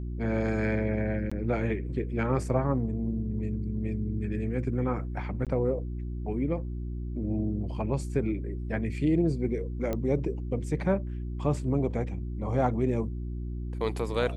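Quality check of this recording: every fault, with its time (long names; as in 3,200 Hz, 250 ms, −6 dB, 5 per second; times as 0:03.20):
mains hum 60 Hz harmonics 6 −34 dBFS
0:01.30–0:01.31: drop-out 15 ms
0:05.45–0:05.47: drop-out 17 ms
0:09.93: click −18 dBFS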